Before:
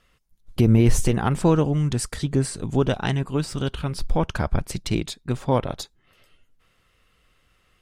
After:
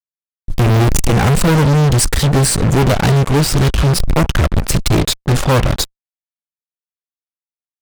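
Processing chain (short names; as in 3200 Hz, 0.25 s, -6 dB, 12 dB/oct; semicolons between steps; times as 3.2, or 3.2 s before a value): low shelf 120 Hz +8.5 dB; fuzz box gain 35 dB, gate -36 dBFS; gain +3.5 dB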